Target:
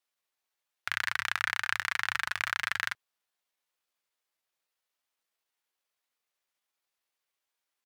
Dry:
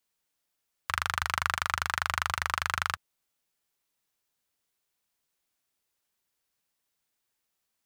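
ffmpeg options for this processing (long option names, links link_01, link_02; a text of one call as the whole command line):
ffmpeg -i in.wav -af "bass=frequency=250:gain=-14,treble=frequency=4000:gain=-6,asetrate=55563,aresample=44100,atempo=0.793701" out.wav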